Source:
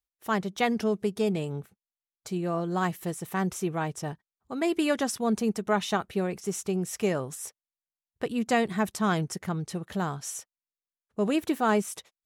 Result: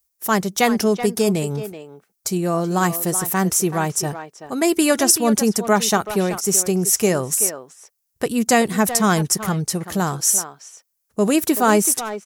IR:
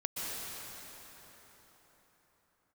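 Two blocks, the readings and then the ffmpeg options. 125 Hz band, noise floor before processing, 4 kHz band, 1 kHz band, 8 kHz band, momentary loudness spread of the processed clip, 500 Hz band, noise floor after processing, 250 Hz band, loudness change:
+8.5 dB, under -85 dBFS, +12.0 dB, +9.0 dB, +19.5 dB, 10 LU, +8.5 dB, -74 dBFS, +8.5 dB, +10.5 dB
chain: -filter_complex "[0:a]aexciter=amount=3.2:drive=6.5:freq=4.9k,asplit=2[a][b];[b]adelay=380,highpass=300,lowpass=3.4k,asoftclip=type=hard:threshold=-19dB,volume=-10dB[c];[a][c]amix=inputs=2:normalize=0,volume=8.5dB"

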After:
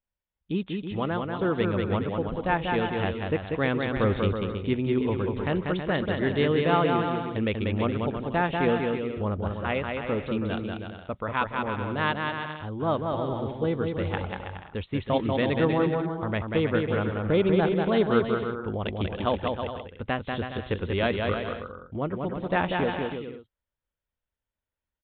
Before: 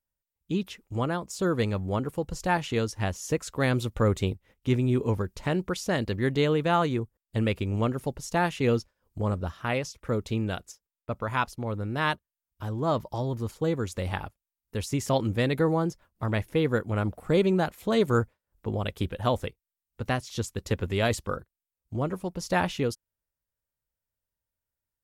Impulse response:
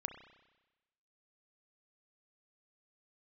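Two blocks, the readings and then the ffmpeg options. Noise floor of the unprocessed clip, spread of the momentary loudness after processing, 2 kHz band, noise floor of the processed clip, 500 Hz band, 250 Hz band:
under -85 dBFS, 9 LU, +2.0 dB, under -85 dBFS, +2.0 dB, +2.0 dB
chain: -filter_complex "[0:a]equalizer=f=120:w=5.8:g=-9.5,asplit=2[a][b];[b]aecho=0:1:190|323|416.1|481.3|526.9:0.631|0.398|0.251|0.158|0.1[c];[a][c]amix=inputs=2:normalize=0,aresample=8000,aresample=44100"

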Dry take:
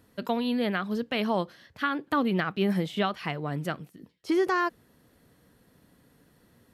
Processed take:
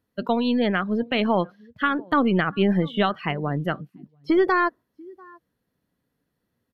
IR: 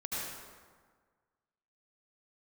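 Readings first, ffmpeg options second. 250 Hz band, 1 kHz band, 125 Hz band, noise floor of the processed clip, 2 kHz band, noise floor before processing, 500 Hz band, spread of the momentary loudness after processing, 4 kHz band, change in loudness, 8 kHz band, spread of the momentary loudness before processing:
+5.5 dB, +5.5 dB, +6.0 dB, -78 dBFS, +5.5 dB, -64 dBFS, +5.5 dB, 7 LU, +4.0 dB, +5.5 dB, under -15 dB, 8 LU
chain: -af "aecho=1:1:692:0.0708,aeval=exprs='0.211*(cos(1*acos(clip(val(0)/0.211,-1,1)))-cos(1*PI/2))+0.00531*(cos(6*acos(clip(val(0)/0.211,-1,1)))-cos(6*PI/2))':c=same,afftdn=nr=21:nf=-39,equalizer=f=8.3k:t=o:w=0.42:g=-5.5,volume=5.5dB"

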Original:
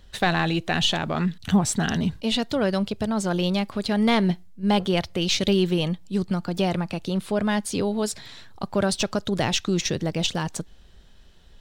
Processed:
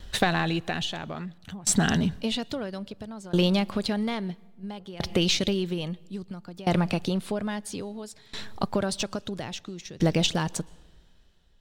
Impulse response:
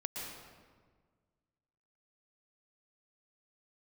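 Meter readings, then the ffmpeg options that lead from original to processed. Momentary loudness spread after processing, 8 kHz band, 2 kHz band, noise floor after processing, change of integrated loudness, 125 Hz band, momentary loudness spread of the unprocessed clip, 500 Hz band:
16 LU, -1.0 dB, -3.5 dB, -56 dBFS, -3.5 dB, -3.0 dB, 7 LU, -5.0 dB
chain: -filter_complex "[0:a]acompressor=threshold=-24dB:ratio=6,asplit=2[a][b];[1:a]atrim=start_sample=2205[c];[b][c]afir=irnorm=-1:irlink=0,volume=-22dB[d];[a][d]amix=inputs=2:normalize=0,aeval=exprs='val(0)*pow(10,-22*if(lt(mod(0.6*n/s,1),2*abs(0.6)/1000),1-mod(0.6*n/s,1)/(2*abs(0.6)/1000),(mod(0.6*n/s,1)-2*abs(0.6)/1000)/(1-2*abs(0.6)/1000))/20)':c=same,volume=7.5dB"

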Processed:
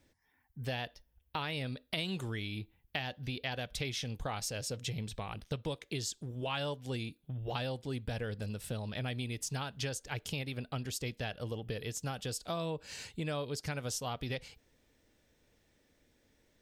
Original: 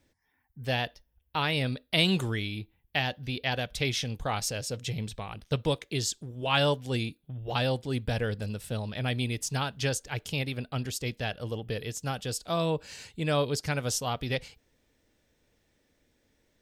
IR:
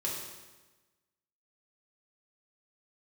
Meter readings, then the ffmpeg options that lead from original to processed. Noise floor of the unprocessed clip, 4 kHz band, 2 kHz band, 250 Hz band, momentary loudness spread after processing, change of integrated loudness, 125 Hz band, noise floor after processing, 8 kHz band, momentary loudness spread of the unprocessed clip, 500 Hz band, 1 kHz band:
-73 dBFS, -8.5 dB, -8.5 dB, -7.5 dB, 4 LU, -8.0 dB, -7.0 dB, -73 dBFS, -6.0 dB, 8 LU, -8.0 dB, -8.0 dB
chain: -af "acompressor=threshold=-35dB:ratio=4"

